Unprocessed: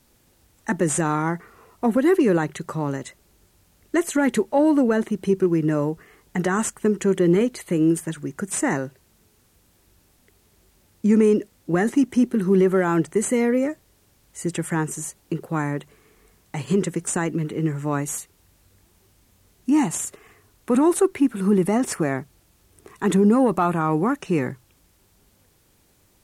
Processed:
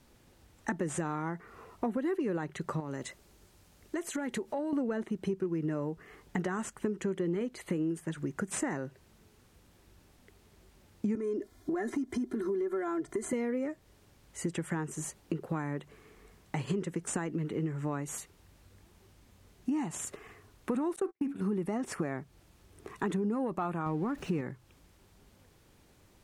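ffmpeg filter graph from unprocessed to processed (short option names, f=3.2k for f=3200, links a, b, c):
-filter_complex "[0:a]asettb=1/sr,asplit=3[a][b][c];[a]atrim=end=2.804[d];[b]atrim=start=2.8:end=4.73,asetpts=PTS-STARTPTS,afade=t=in:d=0.004:c=qsin,afade=t=out:st=1.926:d=0.004:c=qsin,bass=f=250:g=-2,treble=f=4k:g=4,acompressor=threshold=-33dB:ratio=2.5:attack=3.2:release=140:knee=1:detection=peak[e];[c]atrim=start=4.726[f];[d][e]acrossfade=d=0.004:c1=hsin:c2=qsin[g];[g][f]acrossfade=d=0.004:c1=qsin:c2=hsin,asettb=1/sr,asplit=3[h][i][j];[h]atrim=end=11.154[k];[i]atrim=start=11.15:end=13.33,asetpts=PTS-STARTPTS,afade=t=in:d=0.004:c=qsin,afade=t=out:st=2.176:d=0.004:c=qsin,equalizer=f=2.7k:w=6.1:g=-15,aecho=1:1:2.9:0.98,atrim=end_sample=96138,acompressor=threshold=-27dB:ratio=2:attack=3.2:release=140:knee=1:detection=peak[l];[j]atrim=start=13.326[m];[k][l]acrossfade=d=0.004:c1=hsin:c2=qsin[n];[n][m]acrossfade=d=0.004:c1=qsin:c2=hsin,asettb=1/sr,asplit=3[o][p][q];[o]atrim=end=20.964[r];[p]atrim=start=20.96:end=21.43,asetpts=PTS-STARTPTS,afade=t=in:d=0.004:c=qsin,afade=t=out:st=0.466:d=0.004:c=qsin,bandreject=f=70.12:t=h:w=4,bandreject=f=140.24:t=h:w=4,bandreject=f=210.36:t=h:w=4,bandreject=f=280.48:t=h:w=4,bandreject=f=350.6:t=h:w=4,bandreject=f=420.72:t=h:w=4,bandreject=f=490.84:t=h:w=4,bandreject=f=560.96:t=h:w=4,bandreject=f=631.08:t=h:w=4,bandreject=f=701.2:t=h:w=4,bandreject=f=771.32:t=h:w=4,bandreject=f=841.44:t=h:w=4,bandreject=f=911.56:t=h:w=4,bandreject=f=981.68:t=h:w=4,bandreject=f=1.0518k:t=h:w=4,bandreject=f=1.12192k:t=h:w=4,bandreject=f=1.19204k:t=h:w=4,bandreject=f=1.26216k:t=h:w=4,bandreject=f=1.33228k:t=h:w=4,bandreject=f=1.4024k:t=h:w=4,bandreject=f=1.47252k:t=h:w=4,bandreject=f=1.54264k:t=h:w=4,bandreject=f=1.61276k:t=h:w=4,bandreject=f=1.68288k:t=h:w=4,bandreject=f=1.753k:t=h:w=4,bandreject=f=1.82312k:t=h:w=4,bandreject=f=1.89324k:t=h:w=4,bandreject=f=1.96336k:t=h:w=4,bandreject=f=2.03348k:t=h:w=4,bandreject=f=2.1036k:t=h:w=4,bandreject=f=2.17372k:t=h:w=4,bandreject=f=2.24384k:t=h:w=4,bandreject=f=2.31396k:t=h:w=4,bandreject=f=2.38408k:t=h:w=4,bandreject=f=2.4542k:t=h:w=4,bandreject=f=2.52432k:t=h:w=4,agate=range=-48dB:threshold=-27dB:ratio=16:release=100:detection=peak[s];[q]atrim=start=21.426[t];[r][s]acrossfade=d=0.004:c1=hsin:c2=qsin[u];[u][t]acrossfade=d=0.004:c1=qsin:c2=hsin,asettb=1/sr,asplit=3[v][w][x];[v]atrim=end=23.864[y];[w]atrim=start=23.86:end=24.41,asetpts=PTS-STARTPTS,afade=t=in:d=0.004:c=qsin,afade=t=out:st=0.546:d=0.004:c=qsin,aeval=exprs='val(0)+0.5*0.0168*sgn(val(0))':c=same,lowshelf=f=250:g=6.5[z];[x]atrim=start=24.406[aa];[y][z]acrossfade=d=0.004:c1=hsin:c2=qsin[ab];[ab][aa]acrossfade=d=0.004:c1=qsin:c2=hsin,lowpass=f=3.9k:p=1,acompressor=threshold=-31dB:ratio=5"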